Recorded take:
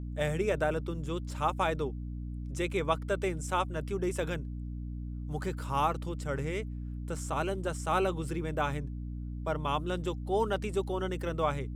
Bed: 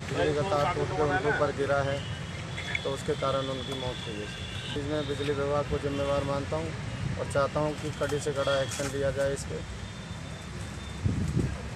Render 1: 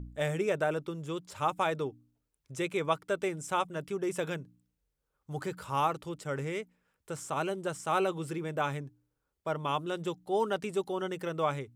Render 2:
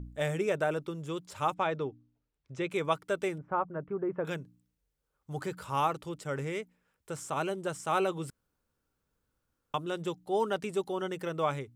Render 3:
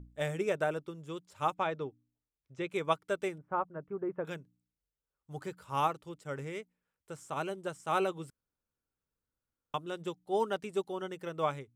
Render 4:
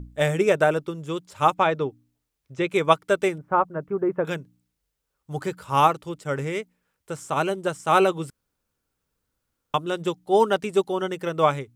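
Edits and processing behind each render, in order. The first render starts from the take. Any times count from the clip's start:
de-hum 60 Hz, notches 5
1.54–2.71 s: distance through air 140 m; 3.38–4.25 s: low-pass 1.5 kHz 24 dB/octave; 8.30–9.74 s: room tone
upward expansion 1.5:1, over -47 dBFS
trim +12 dB

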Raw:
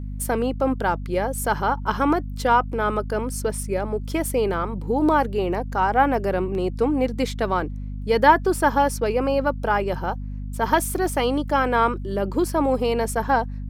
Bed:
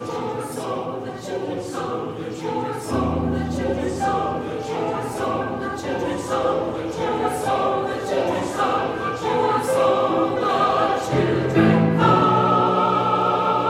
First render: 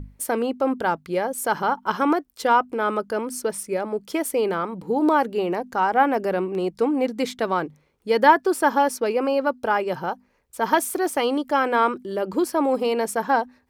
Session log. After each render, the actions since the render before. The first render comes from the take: hum notches 50/100/150/200/250 Hz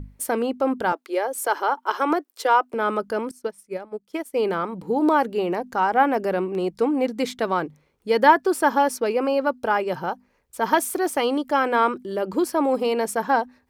0.92–2.74 s: steep high-pass 300 Hz 48 dB/octave; 3.31–4.40 s: upward expansion 2.5:1, over -33 dBFS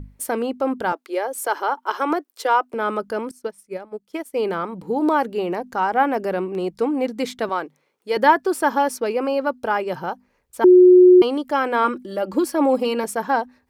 7.49–8.17 s: Bessel high-pass 390 Hz; 10.64–11.22 s: bleep 363 Hz -6 dBFS; 11.84–13.04 s: comb 3.6 ms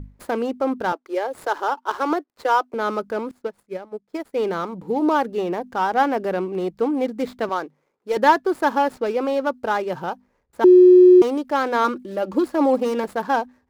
median filter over 15 samples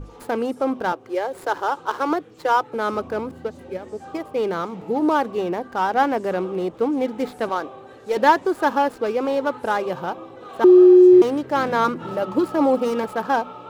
add bed -18.5 dB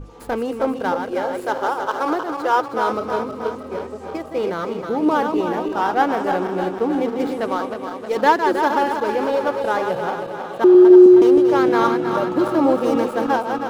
backward echo that repeats 158 ms, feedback 75%, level -6 dB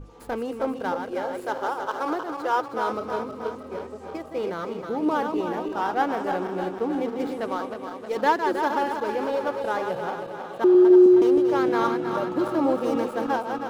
trim -6 dB

